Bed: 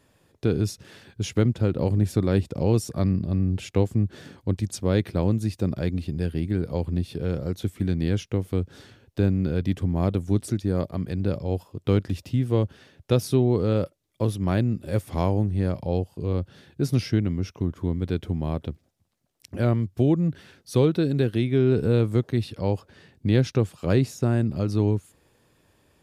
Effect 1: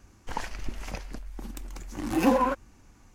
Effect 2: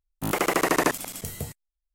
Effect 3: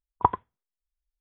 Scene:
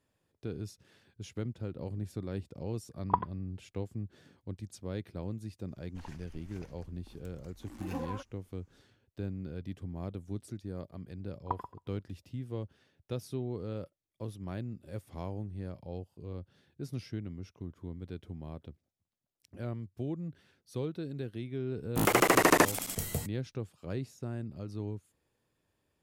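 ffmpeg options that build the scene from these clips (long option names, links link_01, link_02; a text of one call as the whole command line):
ffmpeg -i bed.wav -i cue0.wav -i cue1.wav -i cue2.wav -filter_complex "[3:a]asplit=2[link_01][link_02];[0:a]volume=-16dB[link_03];[link_02]asplit=2[link_04][link_05];[link_05]adelay=134,lowpass=frequency=1100:poles=1,volume=-10.5dB,asplit=2[link_06][link_07];[link_07]adelay=134,lowpass=frequency=1100:poles=1,volume=0.24,asplit=2[link_08][link_09];[link_09]adelay=134,lowpass=frequency=1100:poles=1,volume=0.24[link_10];[link_04][link_06][link_08][link_10]amix=inputs=4:normalize=0[link_11];[link_01]atrim=end=1.2,asetpts=PTS-STARTPTS,volume=-6.5dB,afade=type=in:duration=0.004:curve=hsin,afade=type=out:start_time=1.196:duration=0.004:curve=hsin,adelay=2890[link_12];[1:a]atrim=end=3.14,asetpts=PTS-STARTPTS,volume=-17dB,afade=type=in:duration=0.004:curve=hsin,afade=type=out:start_time=3.136:duration=0.004:curve=hsin,adelay=5680[link_13];[link_11]atrim=end=1.2,asetpts=PTS-STARTPTS,volume=-13.5dB,afade=type=in:duration=0.004:curve=hsin,afade=type=out:start_time=1.196:duration=0.004:curve=hsin,adelay=11260[link_14];[2:a]atrim=end=1.94,asetpts=PTS-STARTPTS,volume=-0.5dB,afade=type=in:duration=0.004:curve=hsin,afade=type=out:start_time=1.936:duration=0.004:curve=hsin,adelay=21740[link_15];[link_03][link_12][link_13][link_14][link_15]amix=inputs=5:normalize=0" out.wav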